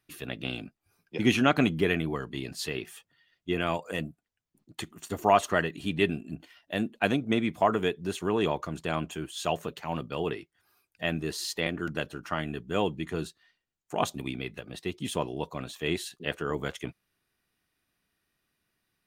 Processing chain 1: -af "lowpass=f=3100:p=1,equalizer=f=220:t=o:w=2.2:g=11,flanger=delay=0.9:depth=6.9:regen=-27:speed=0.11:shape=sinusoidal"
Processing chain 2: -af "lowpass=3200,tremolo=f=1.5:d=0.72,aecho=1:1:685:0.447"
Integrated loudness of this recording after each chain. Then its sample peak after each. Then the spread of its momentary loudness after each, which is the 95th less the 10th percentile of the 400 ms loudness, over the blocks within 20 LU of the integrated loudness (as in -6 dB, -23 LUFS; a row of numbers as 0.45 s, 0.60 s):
-28.0 LUFS, -33.0 LUFS; -7.5 dBFS, -9.0 dBFS; 14 LU, 16 LU